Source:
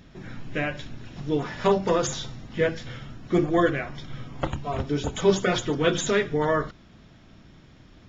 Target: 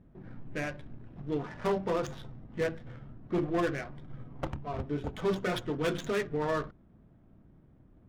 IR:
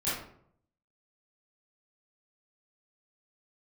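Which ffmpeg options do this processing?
-af "adynamicsmooth=sensitivity=4:basefreq=790,asoftclip=type=hard:threshold=0.15,volume=0.447"

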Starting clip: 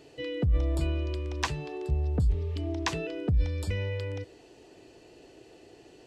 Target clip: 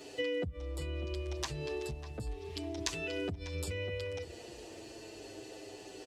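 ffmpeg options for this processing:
-filter_complex "[0:a]acrossover=split=210[s0][s1];[s1]acompressor=threshold=0.0224:ratio=6[s2];[s0][s2]amix=inputs=2:normalize=0,asettb=1/sr,asplit=3[s3][s4][s5];[s3]atrim=end=1.794[s6];[s4]atrim=start=1.79:end=3.55,asetpts=PTS-STARTPTS,afade=t=in:d=0.004:c=qsin,afade=t=out:st=1.756:d=0.004:c=qsin,tiltshelf=f=1500:g=-3.5[s7];[s5]atrim=start=3.546[s8];[s6][s7]acrossfade=d=0.004:c1=hsin:c2=qsin[s9];[s9][s8]acrossfade=d=0.004:c1=qsin:c2=hsin,acompressor=threshold=0.0126:ratio=6,bass=f=250:g=-6,treble=f=4000:g=6,asplit=2[s10][s11];[s11]adelay=597,lowpass=f=1600:p=1,volume=0.282,asplit=2[s12][s13];[s13]adelay=597,lowpass=f=1600:p=1,volume=0.32,asplit=2[s14][s15];[s15]adelay=597,lowpass=f=1600:p=1,volume=0.32[s16];[s10][s12][s14][s16]amix=inputs=4:normalize=0,asplit=2[s17][s18];[s18]adelay=7.6,afreqshift=-0.33[s19];[s17][s19]amix=inputs=2:normalize=1,volume=2.51"

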